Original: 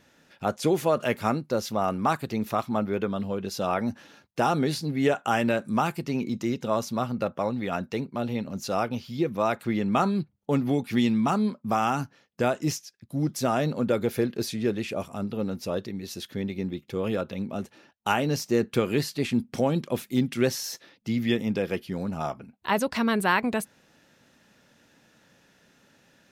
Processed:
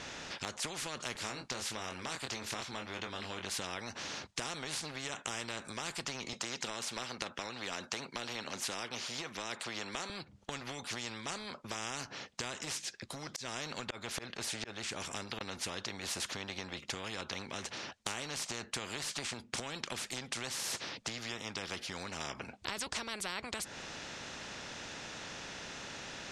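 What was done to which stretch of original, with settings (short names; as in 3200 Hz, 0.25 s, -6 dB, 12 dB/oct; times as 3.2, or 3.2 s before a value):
1.13–3.45 doubler 23 ms -6 dB
6.33–10.1 HPF 310 Hz
13.3–15.41 auto swell 0.566 s
whole clip: LPF 7800 Hz 24 dB/oct; compressor 6:1, threshold -33 dBFS; spectral compressor 4:1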